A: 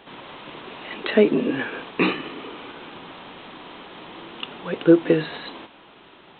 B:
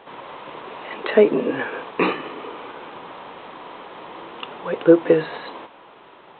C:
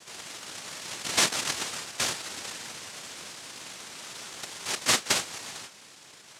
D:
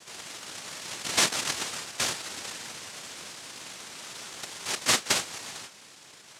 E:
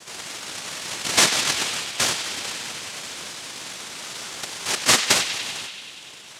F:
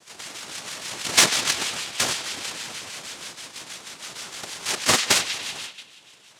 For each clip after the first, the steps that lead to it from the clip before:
graphic EQ 125/500/1000/2000 Hz +3/+9/+9/+4 dB; trim -5.5 dB
compression 1.5:1, threshold -28 dBFS, peak gain reduction 8 dB; flange 0.32 Hz, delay 8.1 ms, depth 1.2 ms, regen -70%; noise-vocoded speech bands 1
no audible change
band-passed feedback delay 96 ms, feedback 81%, band-pass 3 kHz, level -8 dB; trim +6.5 dB
harmonic tremolo 6.3 Hz, depth 50%, crossover 1.2 kHz; gate -38 dBFS, range -7 dB; Chebyshev shaper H 7 -29 dB, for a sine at -3 dBFS; trim +2.5 dB

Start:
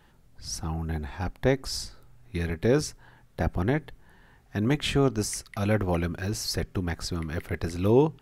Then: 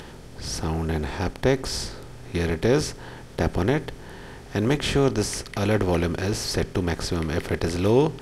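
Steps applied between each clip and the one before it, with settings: spectral levelling over time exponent 0.6; Bessel low-pass 12 kHz, order 2; upward compressor, threshold -39 dBFS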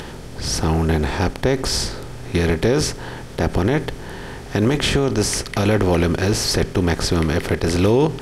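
loudness maximiser +14.5 dB; trim -6.5 dB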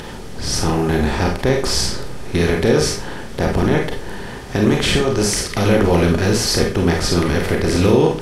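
reverberation RT60 0.35 s, pre-delay 31 ms, DRR 1 dB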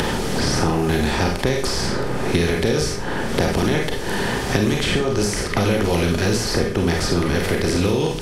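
level rider; in parallel at -6.5 dB: saturation -9.5 dBFS, distortion -14 dB; on the sum: three bands compressed up and down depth 100%; trim -9 dB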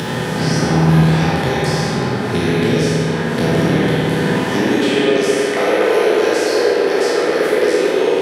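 spectral sustain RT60 1.34 s; high-pass sweep 140 Hz -> 440 Hz, 4.09–5.04 s; spring tank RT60 3.7 s, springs 50/56 ms, chirp 35 ms, DRR -4 dB; trim -5 dB

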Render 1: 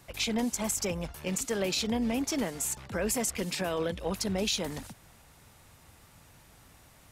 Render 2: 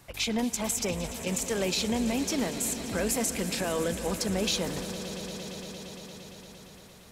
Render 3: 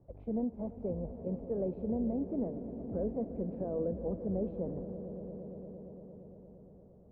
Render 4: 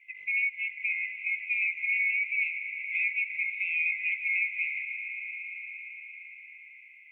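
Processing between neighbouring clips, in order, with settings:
echo with a slow build-up 115 ms, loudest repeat 5, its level -16 dB; trim +1 dB
Chebyshev low-pass 580 Hz, order 3; trim -3.5 dB
split-band scrambler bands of 2 kHz; trim +5 dB

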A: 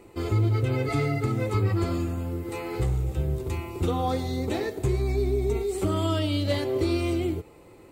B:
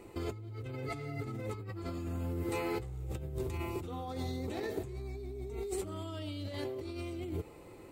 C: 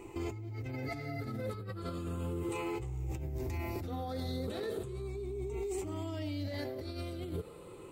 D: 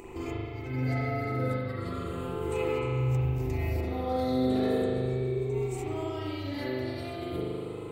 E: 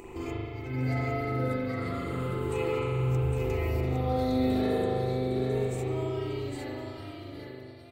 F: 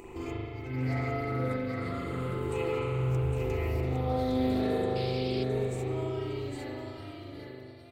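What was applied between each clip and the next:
compressor with a negative ratio -32 dBFS, ratio -1; trim -7 dB
drifting ripple filter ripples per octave 0.69, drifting -0.36 Hz, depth 9 dB; peak limiter -30 dBFS, peak gain reduction 7.5 dB; trim +1 dB
upward compressor, threshold -46 dBFS; spring tank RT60 2.2 s, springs 39 ms, chirp 35 ms, DRR -7 dB
fade out at the end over 2.28 s; delay 809 ms -5.5 dB
painted sound noise, 4.95–5.44 s, 2.1–5.1 kHz -42 dBFS; loudspeaker Doppler distortion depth 0.14 ms; trim -1.5 dB

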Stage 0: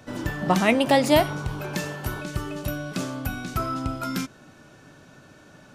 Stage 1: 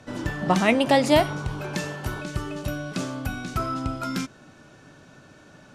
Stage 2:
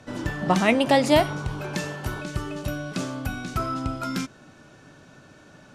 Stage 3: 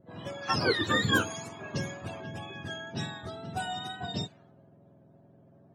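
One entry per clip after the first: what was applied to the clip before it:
low-pass 10 kHz 12 dB/octave
no audible change
spectrum inverted on a logarithmic axis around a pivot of 990 Hz; wow and flutter 25 cents; level-controlled noise filter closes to 520 Hz, open at -23.5 dBFS; trim -4.5 dB

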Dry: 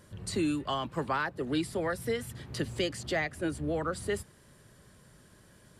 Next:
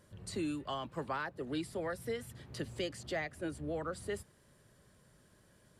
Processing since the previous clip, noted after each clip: peaking EQ 580 Hz +2.5 dB 0.75 oct; trim -7.5 dB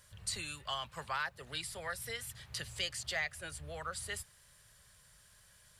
amplifier tone stack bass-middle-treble 10-0-10; trim +9.5 dB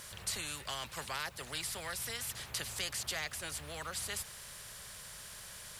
spectrum-flattening compressor 2:1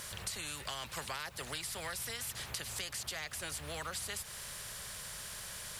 compression, threshold -41 dBFS, peak gain reduction 8.5 dB; trim +4 dB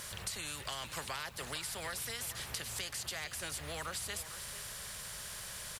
delay 453 ms -12.5 dB

